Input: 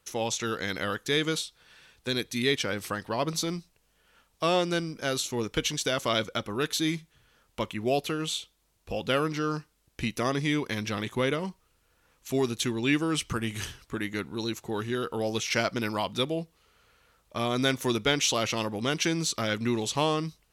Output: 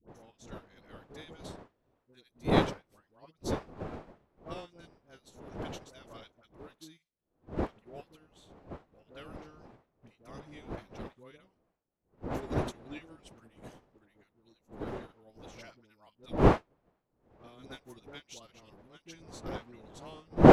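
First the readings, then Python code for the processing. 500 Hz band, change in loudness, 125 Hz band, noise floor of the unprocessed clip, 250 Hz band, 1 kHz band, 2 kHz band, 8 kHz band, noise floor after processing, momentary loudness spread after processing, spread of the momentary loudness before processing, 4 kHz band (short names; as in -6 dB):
-4.5 dB, -4.5 dB, -2.5 dB, -69 dBFS, -4.0 dB, -3.5 dB, -13.0 dB, -22.0 dB, -78 dBFS, 24 LU, 8 LU, -19.0 dB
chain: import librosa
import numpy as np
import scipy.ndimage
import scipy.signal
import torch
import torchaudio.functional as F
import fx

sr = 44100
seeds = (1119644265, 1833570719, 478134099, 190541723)

y = fx.dmg_wind(x, sr, seeds[0], corner_hz=560.0, level_db=-25.0)
y = fx.dispersion(y, sr, late='highs', ms=84.0, hz=840.0)
y = fx.upward_expand(y, sr, threshold_db=-34.0, expansion=2.5)
y = y * 10.0 ** (-2.0 / 20.0)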